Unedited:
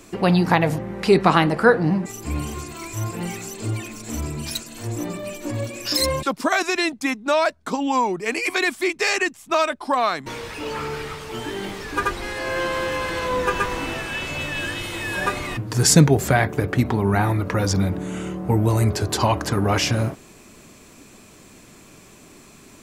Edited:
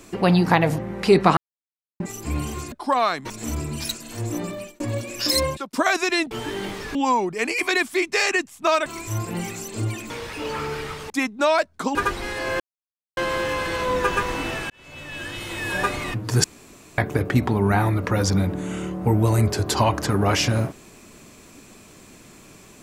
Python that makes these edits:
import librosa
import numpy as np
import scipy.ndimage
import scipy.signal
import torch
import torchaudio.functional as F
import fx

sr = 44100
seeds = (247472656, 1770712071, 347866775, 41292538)

y = fx.edit(x, sr, fx.silence(start_s=1.37, length_s=0.63),
    fx.swap(start_s=2.72, length_s=1.24, other_s=9.73, other_length_s=0.58),
    fx.fade_out_span(start_s=5.19, length_s=0.27),
    fx.fade_out_span(start_s=6.1, length_s=0.29),
    fx.swap(start_s=6.97, length_s=0.85, other_s=11.31, other_length_s=0.64),
    fx.insert_silence(at_s=12.6, length_s=0.57),
    fx.fade_in_span(start_s=14.13, length_s=1.03),
    fx.room_tone_fill(start_s=15.87, length_s=0.54), tone=tone)